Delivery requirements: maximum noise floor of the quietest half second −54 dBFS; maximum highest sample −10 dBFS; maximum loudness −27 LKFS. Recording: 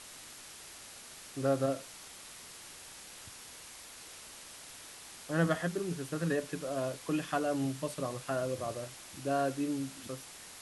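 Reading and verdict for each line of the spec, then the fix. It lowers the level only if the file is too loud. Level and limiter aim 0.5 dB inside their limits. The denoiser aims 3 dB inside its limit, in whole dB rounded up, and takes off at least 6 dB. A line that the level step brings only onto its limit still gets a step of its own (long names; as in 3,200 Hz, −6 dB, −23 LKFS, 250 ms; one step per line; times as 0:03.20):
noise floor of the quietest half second −50 dBFS: out of spec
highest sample −16.0 dBFS: in spec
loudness −35.0 LKFS: in spec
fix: broadband denoise 7 dB, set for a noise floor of −50 dBFS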